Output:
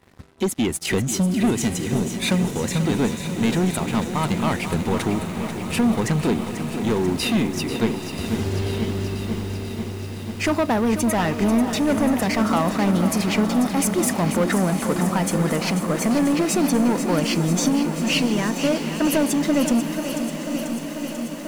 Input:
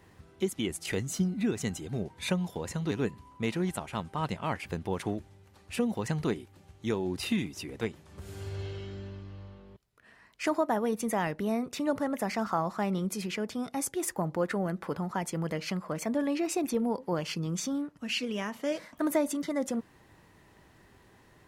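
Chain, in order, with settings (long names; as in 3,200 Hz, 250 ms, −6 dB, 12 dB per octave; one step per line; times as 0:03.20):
hollow resonant body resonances 240/3,800 Hz, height 6 dB
leveller curve on the samples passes 3
feedback delay with all-pass diffusion 868 ms, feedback 69%, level −11.5 dB
feedback echo at a low word length 490 ms, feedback 80%, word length 7 bits, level −9.5 dB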